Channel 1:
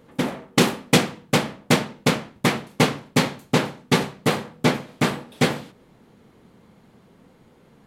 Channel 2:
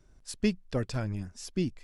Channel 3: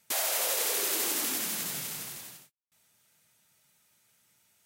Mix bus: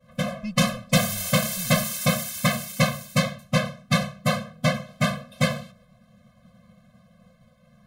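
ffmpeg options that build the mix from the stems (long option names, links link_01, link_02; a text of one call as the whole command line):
ffmpeg -i stem1.wav -i stem2.wav -i stem3.wav -filter_complex "[0:a]agate=range=-33dB:threshold=-50dB:ratio=3:detection=peak,volume=2dB[link_01];[1:a]agate=range=-52dB:threshold=-56dB:ratio=16:detection=peak,tremolo=f=1.7:d=0.81,volume=-1.5dB[link_02];[2:a]agate=range=-20dB:threshold=-59dB:ratio=16:detection=peak,tiltshelf=frequency=720:gain=-7.5,bandreject=frequency=50:width_type=h:width=6,bandreject=frequency=100:width_type=h:width=6,bandreject=frequency=150:width_type=h:width=6,bandreject=frequency=200:width_type=h:width=6,bandreject=frequency=250:width_type=h:width=6,adelay=850,volume=-4.5dB[link_03];[link_01][link_02][link_03]amix=inputs=3:normalize=0,asoftclip=type=tanh:threshold=-5.5dB,afftfilt=real='re*eq(mod(floor(b*sr/1024/250),2),0)':imag='im*eq(mod(floor(b*sr/1024/250),2),0)':win_size=1024:overlap=0.75" out.wav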